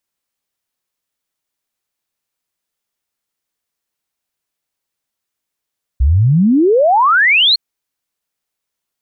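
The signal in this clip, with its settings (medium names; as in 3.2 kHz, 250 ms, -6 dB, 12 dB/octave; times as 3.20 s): log sweep 60 Hz -> 4.4 kHz 1.56 s -7.5 dBFS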